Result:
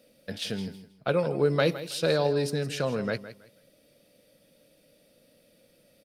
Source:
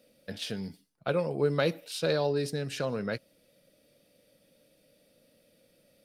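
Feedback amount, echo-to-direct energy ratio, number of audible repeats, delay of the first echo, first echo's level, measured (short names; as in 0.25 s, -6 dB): 24%, -13.5 dB, 2, 0.162 s, -14.0 dB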